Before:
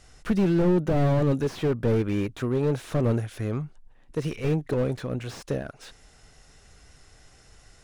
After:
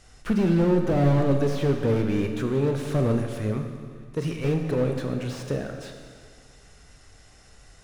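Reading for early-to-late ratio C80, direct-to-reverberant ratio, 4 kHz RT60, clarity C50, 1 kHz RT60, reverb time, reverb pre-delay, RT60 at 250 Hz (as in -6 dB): 6.5 dB, 4.0 dB, 1.9 s, 5.5 dB, 2.0 s, 2.0 s, 23 ms, 2.0 s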